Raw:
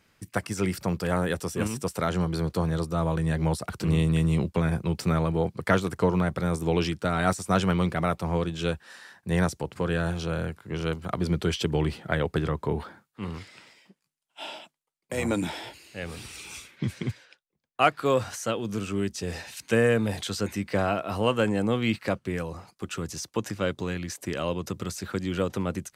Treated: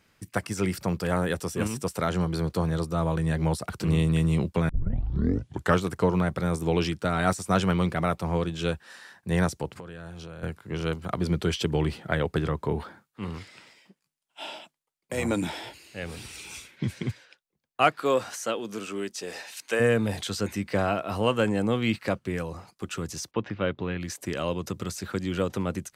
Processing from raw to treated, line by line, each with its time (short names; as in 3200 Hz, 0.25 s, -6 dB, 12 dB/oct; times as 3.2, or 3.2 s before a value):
4.69 tape start 1.13 s
9.7–10.43 compressor 12:1, threshold -37 dBFS
16.06–17.05 notch 1200 Hz
17.91–19.79 HPF 200 Hz -> 460 Hz
23.31–24.01 LPF 3400 Hz 24 dB/oct